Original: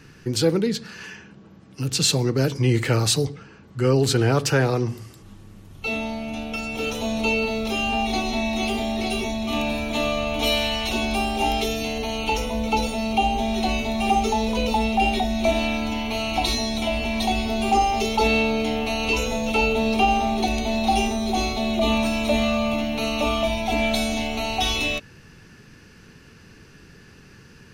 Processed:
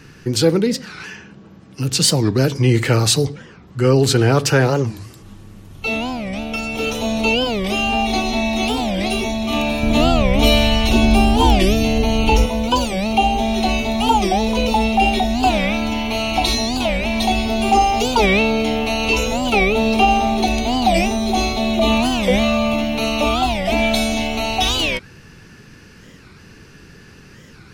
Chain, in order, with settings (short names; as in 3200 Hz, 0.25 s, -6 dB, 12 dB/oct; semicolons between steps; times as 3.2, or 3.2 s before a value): 9.83–12.46 low shelf 300 Hz +11.5 dB; record warp 45 rpm, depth 250 cents; gain +5 dB